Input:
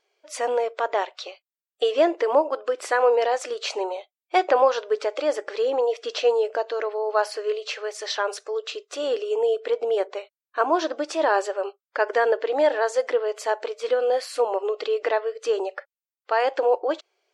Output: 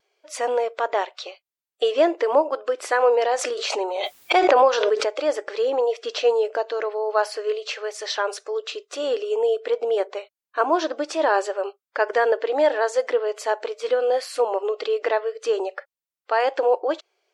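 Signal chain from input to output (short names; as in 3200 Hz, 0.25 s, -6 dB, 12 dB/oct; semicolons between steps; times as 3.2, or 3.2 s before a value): vibrato 0.43 Hz 8.2 cents; 3.34–5.06 backwards sustainer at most 29 dB/s; gain +1 dB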